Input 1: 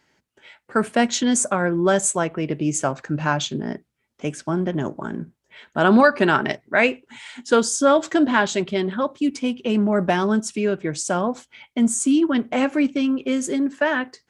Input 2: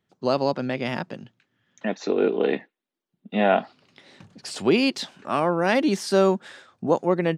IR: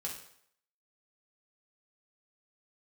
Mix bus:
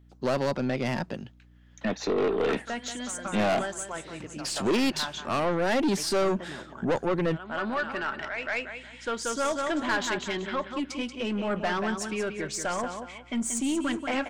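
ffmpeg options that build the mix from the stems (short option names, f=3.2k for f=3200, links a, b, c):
-filter_complex "[0:a]lowpass=f=1.4k:p=1,tiltshelf=f=970:g=-9,adelay=1550,volume=-1.5dB,asplit=2[a][b];[b]volume=-8.5dB[c];[1:a]asoftclip=type=tanh:threshold=-11dB,volume=2dB,asplit=2[d][e];[e]apad=whole_len=698837[f];[a][f]sidechaincompress=threshold=-46dB:ratio=3:attack=8.9:release=1370[g];[c]aecho=0:1:183|366|549|732:1|0.28|0.0784|0.022[h];[g][d][h]amix=inputs=3:normalize=0,highshelf=f=7.2k:g=3,aeval=exprs='val(0)+0.002*(sin(2*PI*60*n/s)+sin(2*PI*2*60*n/s)/2+sin(2*PI*3*60*n/s)/3+sin(2*PI*4*60*n/s)/4+sin(2*PI*5*60*n/s)/5)':c=same,aeval=exprs='(tanh(11.2*val(0)+0.2)-tanh(0.2))/11.2':c=same"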